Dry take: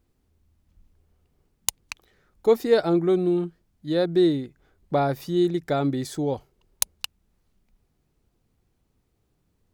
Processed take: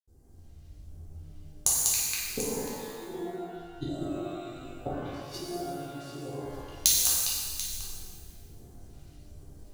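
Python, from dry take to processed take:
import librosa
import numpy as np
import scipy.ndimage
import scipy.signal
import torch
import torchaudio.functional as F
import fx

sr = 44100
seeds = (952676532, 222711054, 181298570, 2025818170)

p1 = fx.vibrato(x, sr, rate_hz=11.0, depth_cents=5.8)
p2 = fx.granulator(p1, sr, seeds[0], grain_ms=100.0, per_s=20.0, spray_ms=100.0, spread_st=0)
p3 = fx.rider(p2, sr, range_db=10, speed_s=0.5)
p4 = fx.gate_flip(p3, sr, shuts_db=-28.0, range_db=-29)
p5 = p4 + fx.echo_multitap(p4, sr, ms=(195, 737), db=(-3.5, -13.0), dry=0)
p6 = fx.phaser_stages(p5, sr, stages=2, low_hz=580.0, high_hz=2600.0, hz=1.3, feedback_pct=45)
p7 = p6 + 0.4 * np.pad(p6, (int(2.5 * sr / 1000.0), 0))[:len(p6)]
p8 = fx.rev_shimmer(p7, sr, seeds[1], rt60_s=1.5, semitones=12, shimmer_db=-8, drr_db=-7.0)
y = p8 * 10.0 ** (6.5 / 20.0)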